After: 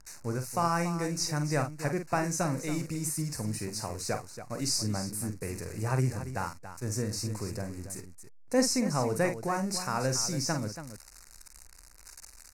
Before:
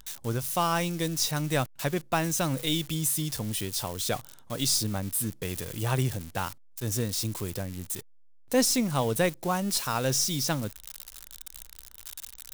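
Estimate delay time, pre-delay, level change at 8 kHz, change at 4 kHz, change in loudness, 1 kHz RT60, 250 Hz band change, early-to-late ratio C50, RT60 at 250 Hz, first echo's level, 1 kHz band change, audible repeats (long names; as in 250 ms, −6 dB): 47 ms, no reverb audible, −4.0 dB, −6.0 dB, −3.0 dB, no reverb audible, −1.5 dB, no reverb audible, no reverb audible, −8.0 dB, −1.5 dB, 2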